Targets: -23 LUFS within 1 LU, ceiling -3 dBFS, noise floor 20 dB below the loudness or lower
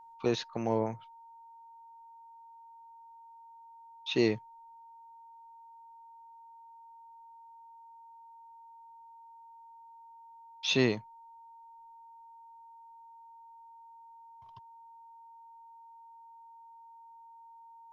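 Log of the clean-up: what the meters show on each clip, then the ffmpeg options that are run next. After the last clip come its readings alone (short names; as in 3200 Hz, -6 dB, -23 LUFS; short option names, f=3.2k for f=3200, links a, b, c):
steady tone 920 Hz; tone level -51 dBFS; loudness -31.5 LUFS; peak -13.0 dBFS; loudness target -23.0 LUFS
-> -af "bandreject=f=920:w=30"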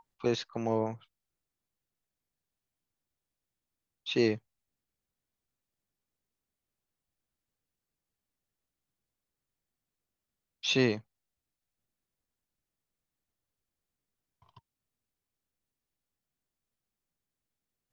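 steady tone none; loudness -31.0 LUFS; peak -13.0 dBFS; loudness target -23.0 LUFS
-> -af "volume=8dB"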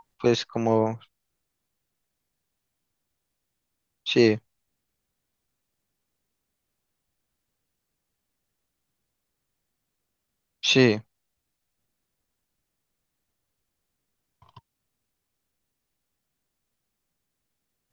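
loudness -23.0 LUFS; peak -5.0 dBFS; noise floor -81 dBFS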